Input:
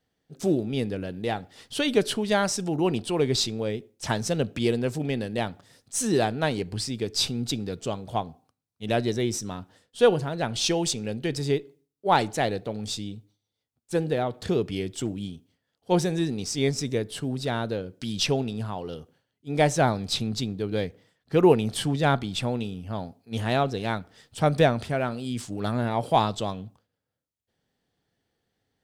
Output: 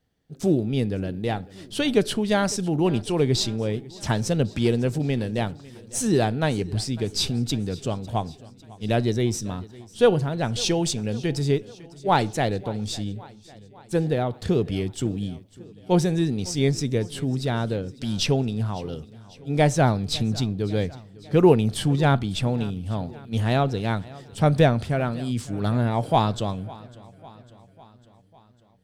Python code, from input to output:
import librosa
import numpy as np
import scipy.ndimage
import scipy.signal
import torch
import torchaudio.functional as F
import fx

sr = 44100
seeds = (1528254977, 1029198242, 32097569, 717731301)

y = fx.low_shelf(x, sr, hz=180.0, db=9.5)
y = fx.echo_feedback(y, sr, ms=551, feedback_pct=59, wet_db=-21)